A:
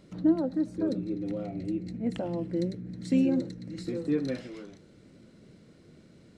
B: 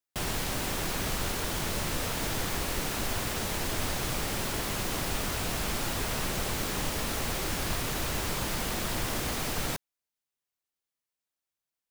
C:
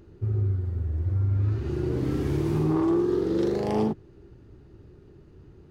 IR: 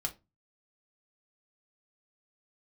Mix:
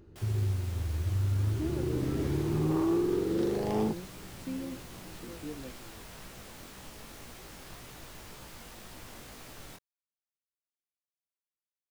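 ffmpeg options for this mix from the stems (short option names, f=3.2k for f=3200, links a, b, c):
-filter_complex "[0:a]adelay=1350,volume=-13.5dB[a];[1:a]flanger=delay=15.5:depth=7.7:speed=1.9,volume=-13dB[b];[2:a]volume=-4.5dB[c];[a][b][c]amix=inputs=3:normalize=0"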